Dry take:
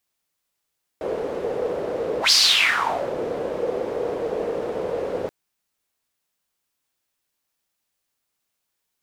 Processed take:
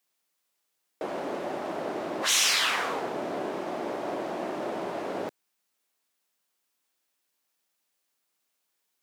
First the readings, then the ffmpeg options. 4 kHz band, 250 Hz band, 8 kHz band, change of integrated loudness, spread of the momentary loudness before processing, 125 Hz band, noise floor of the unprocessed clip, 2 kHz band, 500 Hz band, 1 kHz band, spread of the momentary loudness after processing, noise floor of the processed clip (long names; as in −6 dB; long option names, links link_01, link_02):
−8.5 dB, −2.0 dB, −1.0 dB, −7.0 dB, 14 LU, −6.5 dB, −79 dBFS, −6.5 dB, −8.5 dB, −3.5 dB, 13 LU, −79 dBFS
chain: -af "highpass=200,afftfilt=real='re*lt(hypot(re,im),0.251)':imag='im*lt(hypot(re,im),0.251)':win_size=1024:overlap=0.75"